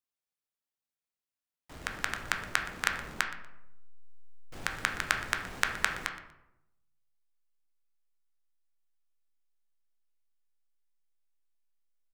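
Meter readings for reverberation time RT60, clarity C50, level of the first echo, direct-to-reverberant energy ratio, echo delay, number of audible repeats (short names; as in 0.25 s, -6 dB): 0.90 s, 8.0 dB, -17.0 dB, 4.0 dB, 0.12 s, 1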